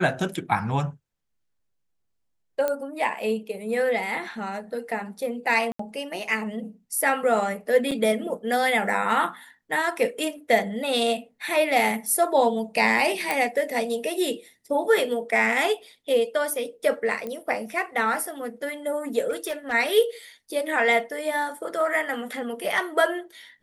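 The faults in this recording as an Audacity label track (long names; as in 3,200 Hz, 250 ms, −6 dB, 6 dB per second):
2.680000	2.680000	click −13 dBFS
5.720000	5.790000	drop-out 74 ms
7.910000	7.920000	drop-out 5.8 ms
13.310000	13.310000	click
17.270000	17.270000	click −20 dBFS
19.290000	19.730000	clipping −24 dBFS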